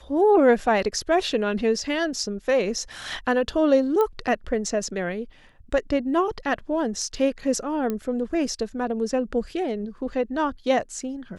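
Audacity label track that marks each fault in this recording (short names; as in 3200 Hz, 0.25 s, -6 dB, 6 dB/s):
4.010000	4.010000	pop -13 dBFS
7.900000	7.900000	pop -15 dBFS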